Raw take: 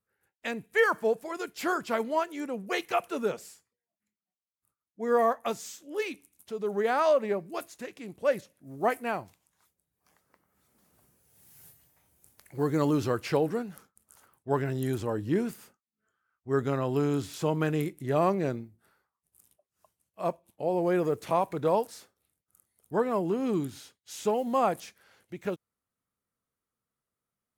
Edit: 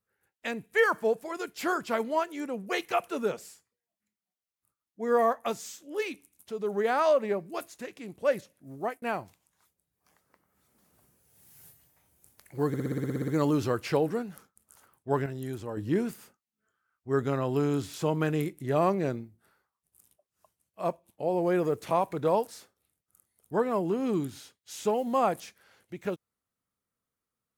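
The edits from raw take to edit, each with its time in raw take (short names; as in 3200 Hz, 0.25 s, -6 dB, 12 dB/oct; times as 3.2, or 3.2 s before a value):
8.72–9.02 fade out
12.68 stutter 0.06 s, 11 plays
14.66–15.17 gain -6 dB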